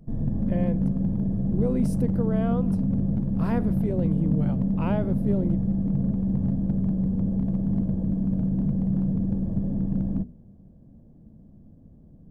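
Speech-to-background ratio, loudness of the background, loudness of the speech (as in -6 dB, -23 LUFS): -4.5 dB, -26.0 LUFS, -30.5 LUFS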